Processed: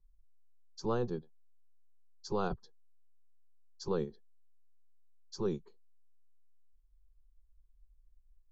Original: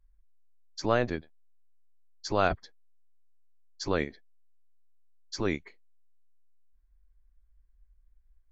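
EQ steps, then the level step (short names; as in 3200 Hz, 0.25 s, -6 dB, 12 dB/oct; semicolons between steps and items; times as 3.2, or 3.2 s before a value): LPF 3400 Hz 6 dB/oct; bell 1700 Hz -10 dB 2 oct; fixed phaser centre 420 Hz, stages 8; 0.0 dB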